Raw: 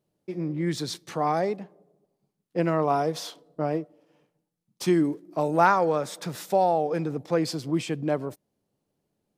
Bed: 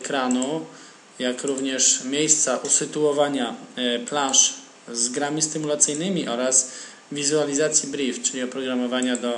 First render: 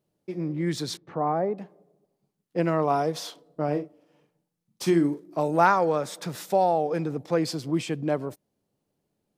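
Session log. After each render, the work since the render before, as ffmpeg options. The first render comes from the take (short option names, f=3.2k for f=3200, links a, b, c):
-filter_complex "[0:a]asettb=1/sr,asplit=3[a][b][c];[a]atrim=end=0.974[d];[b]atrim=start=0.97:end=1.58,asetpts=PTS-STARTPTS,afade=t=in:d=0.004:c=qsin,afade=t=out:st=0.606:d=0.004:c=qsin,lowpass=1.2k[e];[c]atrim=start=1.576[f];[d][e]acrossfade=d=0.004:c1=hsin:c2=qsin[g];[g][f]acrossfade=d=0.004:c1=qsin:c2=hsin,asettb=1/sr,asplit=3[h][i][j];[h]atrim=end=3.644[k];[i]atrim=start=3.64:end=5.4,asetpts=PTS-STARTPTS,afade=t=in:d=0.004:c=qsin,afade=t=out:st=1.756:d=0.004:c=qsin,asplit=2[l][m];[m]adelay=41,volume=-9dB[n];[l][n]amix=inputs=2:normalize=0,atrim=end_sample=77616[o];[j]atrim=start=5.396[p];[k][o]acrossfade=d=0.004:c1=hsin:c2=qsin[q];[q][p]acrossfade=d=0.004:c1=qsin:c2=hsin"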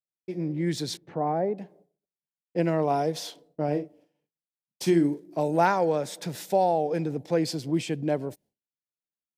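-af "agate=range=-33dB:threshold=-52dB:ratio=3:detection=peak,equalizer=f=1.2k:t=o:w=0.44:g=-11"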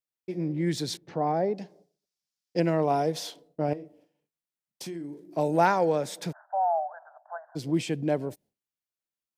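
-filter_complex "[0:a]asettb=1/sr,asplit=3[a][b][c];[a]atrim=end=1.084[d];[b]atrim=start=1.08:end=2.6,asetpts=PTS-STARTPTS,afade=t=in:d=0.004:c=qsin,afade=t=out:st=1.516:d=0.004:c=qsin,equalizer=f=5.2k:t=o:w=1.1:g=14.5[e];[c]atrim=start=2.596[f];[d][e]acrossfade=d=0.004:c1=hsin:c2=qsin[g];[g][f]acrossfade=d=0.004:c1=qsin:c2=hsin,asettb=1/sr,asplit=3[h][i][j];[h]atrim=end=3.734[k];[i]atrim=start=3.73:end=5.29,asetpts=PTS-STARTPTS,afade=t=in:d=0.004:c=qsin,afade=t=out:st=1.556:d=0.004:c=qsin,acompressor=threshold=-37dB:ratio=4:attack=3.2:release=140:knee=1:detection=peak[l];[j]atrim=start=5.286[m];[k][l]acrossfade=d=0.004:c1=hsin:c2=qsin[n];[n][m]acrossfade=d=0.004:c1=qsin:c2=hsin,asplit=3[o][p][q];[o]afade=t=out:st=6.31:d=0.02[r];[p]asuperpass=centerf=1000:order=20:qfactor=1,afade=t=in:st=6.31:d=0.02,afade=t=out:st=7.55:d=0.02[s];[q]afade=t=in:st=7.55:d=0.02[t];[r][s][t]amix=inputs=3:normalize=0"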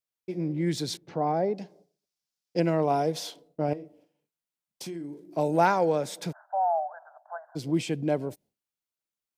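-af "bandreject=f=1.8k:w=17"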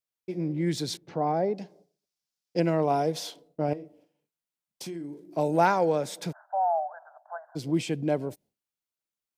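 -af anull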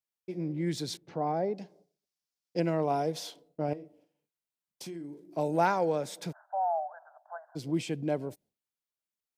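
-af "volume=-4dB"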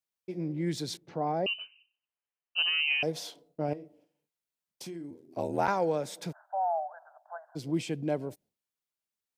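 -filter_complex "[0:a]asettb=1/sr,asplit=3[a][b][c];[a]atrim=end=1.464[d];[b]atrim=start=1.46:end=3.03,asetpts=PTS-STARTPTS,afade=t=in:d=0.004:c=qsin,afade=t=out:st=1.566:d=0.004:c=qsin,lowpass=f=2.7k:t=q:w=0.5098,lowpass=f=2.7k:t=q:w=0.6013,lowpass=f=2.7k:t=q:w=0.9,lowpass=f=2.7k:t=q:w=2.563,afreqshift=-3200[e];[c]atrim=start=3.026[f];[d][e]acrossfade=d=0.004:c1=hsin:c2=qsin[g];[g][f]acrossfade=d=0.004:c1=qsin:c2=hsin,asettb=1/sr,asplit=3[h][i][j];[h]atrim=end=5.104[k];[i]atrim=start=5.1:end=5.68,asetpts=PTS-STARTPTS,afade=t=in:d=0.004:c=qsin,afade=t=out:st=0.576:d=0.004:c=qsin,aeval=exprs='val(0)*sin(2*PI*41*n/s)':c=same[l];[j]atrim=start=5.676[m];[k][l]acrossfade=d=0.004:c1=hsin:c2=qsin[n];[n][m]acrossfade=d=0.004:c1=qsin:c2=hsin"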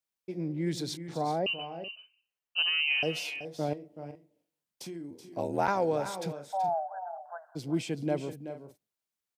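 -af "aecho=1:1:378|420:0.282|0.126"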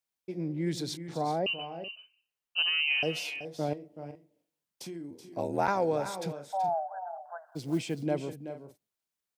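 -filter_complex "[0:a]asettb=1/sr,asplit=3[a][b][c];[a]atrim=end=5.344[d];[b]atrim=start=5.34:end=6.23,asetpts=PTS-STARTPTS,afade=t=in:d=0.004:c=qsin,afade=t=out:st=0.886:d=0.004:c=qsin,bandreject=f=3k:w=12[e];[c]atrim=start=6.226[f];[d][e]acrossfade=d=0.004:c1=hsin:c2=qsin[g];[g][f]acrossfade=d=0.004:c1=qsin:c2=hsin,asettb=1/sr,asplit=3[h][i][j];[h]atrim=end=7.474[k];[i]atrim=start=7.47:end=8.03,asetpts=PTS-STARTPTS,afade=t=in:d=0.004:c=qsin,afade=t=out:st=0.556:d=0.004:c=qsin,acrusher=bits=7:mode=log:mix=0:aa=0.000001[l];[j]atrim=start=8.026[m];[k][l]acrossfade=d=0.004:c1=hsin:c2=qsin[n];[n][m]acrossfade=d=0.004:c1=qsin:c2=hsin"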